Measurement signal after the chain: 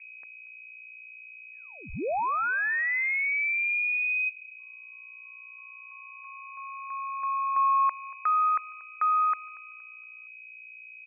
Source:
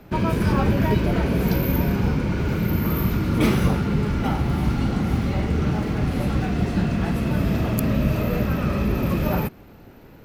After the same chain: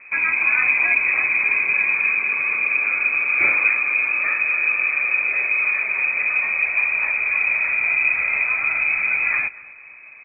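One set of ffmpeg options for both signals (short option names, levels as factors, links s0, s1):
-filter_complex "[0:a]aeval=exprs='val(0)+0.00501*(sin(2*PI*60*n/s)+sin(2*PI*2*60*n/s)/2+sin(2*PI*3*60*n/s)/3+sin(2*PI*4*60*n/s)/4+sin(2*PI*5*60*n/s)/5)':c=same,lowpass=f=2200:t=q:w=0.5098,lowpass=f=2200:t=q:w=0.6013,lowpass=f=2200:t=q:w=0.9,lowpass=f=2200:t=q:w=2.563,afreqshift=-2600,asplit=2[s0][s1];[s1]adelay=234,lowpass=f=1800:p=1,volume=0.112,asplit=2[s2][s3];[s3]adelay=234,lowpass=f=1800:p=1,volume=0.47,asplit=2[s4][s5];[s5]adelay=234,lowpass=f=1800:p=1,volume=0.47,asplit=2[s6][s7];[s7]adelay=234,lowpass=f=1800:p=1,volume=0.47[s8];[s0][s2][s4][s6][s8]amix=inputs=5:normalize=0,volume=1.12"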